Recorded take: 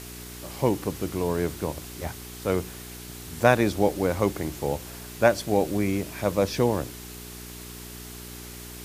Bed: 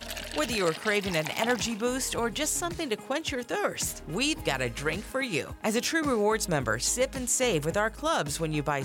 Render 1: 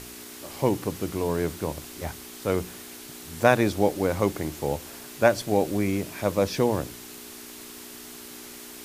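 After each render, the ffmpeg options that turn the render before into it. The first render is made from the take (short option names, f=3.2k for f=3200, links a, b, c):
-af "bandreject=f=60:t=h:w=4,bandreject=f=120:t=h:w=4,bandreject=f=180:t=h:w=4"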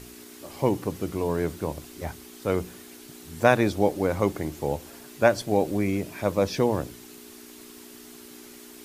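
-af "afftdn=nr=6:nf=-43"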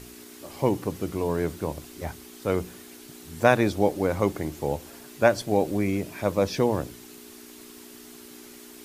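-af anull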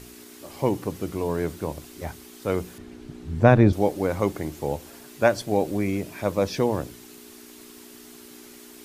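-filter_complex "[0:a]asettb=1/sr,asplit=3[a][b][c];[a]atrim=end=2.784[d];[b]atrim=start=2.78:end=3.73,asetpts=PTS-STARTPTS,afade=t=in:d=0.004:c=qsin,afade=t=out:st=0.946:d=0.004:c=qsin,aemphasis=mode=reproduction:type=riaa[e];[c]atrim=start=3.726[f];[d][e]acrossfade=d=0.004:c1=hsin:c2=qsin[g];[g][f]acrossfade=d=0.004:c1=qsin:c2=hsin"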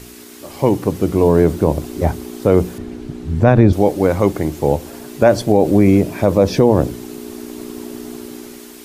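-filter_complex "[0:a]acrossover=split=870[a][b];[a]dynaudnorm=f=280:g=7:m=15dB[c];[c][b]amix=inputs=2:normalize=0,alimiter=level_in=7dB:limit=-1dB:release=50:level=0:latency=1"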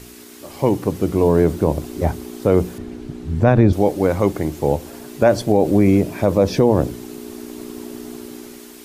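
-af "volume=-2.5dB"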